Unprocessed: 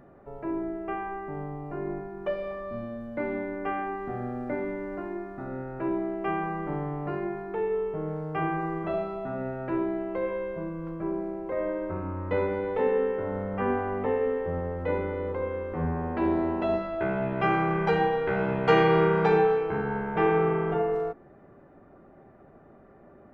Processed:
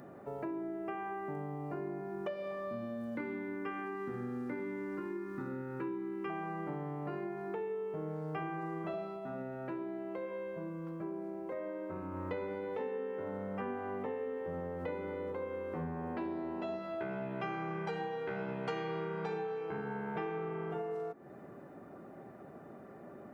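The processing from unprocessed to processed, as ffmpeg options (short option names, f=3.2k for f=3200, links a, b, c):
-filter_complex "[0:a]asettb=1/sr,asplit=3[a][b][c];[a]atrim=end=3.154[d];[b]atrim=start=3.15:end=6.3,asetpts=PTS-STARTPTS,afade=t=in:d=0.004:c=qsin,afade=t=out:st=3.146:d=0.004:c=qsin,asuperstop=centerf=670:order=4:qfactor=2[e];[c]atrim=start=6.296[f];[d][e]acrossfade=d=0.004:c1=hsin:c2=qsin[g];[g][f]acrossfade=d=0.004:c1=qsin:c2=hsin,asplit=3[h][i][j];[h]atrim=end=9.21,asetpts=PTS-STARTPTS,afade=t=out:st=9.05:d=0.16:silence=0.398107[k];[i]atrim=start=9.21:end=12.11,asetpts=PTS-STARTPTS,volume=-8dB[l];[j]atrim=start=12.11,asetpts=PTS-STARTPTS,afade=t=in:d=0.16:silence=0.398107[m];[k][l][m]concat=n=3:v=0:a=1,highpass=150,bass=f=250:g=3,treble=f=4k:g=10,acompressor=threshold=-39dB:ratio=6,volume=2dB"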